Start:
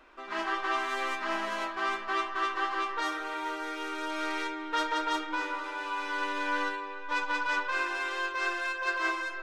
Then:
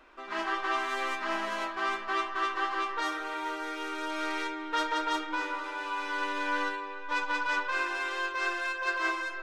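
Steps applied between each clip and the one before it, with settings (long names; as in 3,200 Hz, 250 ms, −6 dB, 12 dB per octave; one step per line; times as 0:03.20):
no processing that can be heard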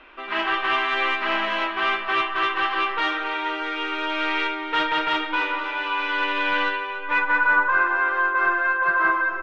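hard clipping −25 dBFS, distortion −18 dB
low-pass filter sweep 2,900 Hz → 1,400 Hz, 0:06.89–0:07.57
single-tap delay 277 ms −14.5 dB
level +6.5 dB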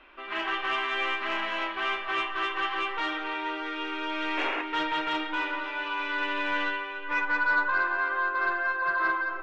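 sound drawn into the spectrogram noise, 0:04.37–0:04.62, 260–2,900 Hz −25 dBFS
soft clipping −10.5 dBFS, distortion −26 dB
convolution reverb RT60 2.9 s, pre-delay 3 ms, DRR 8 dB
level −6.5 dB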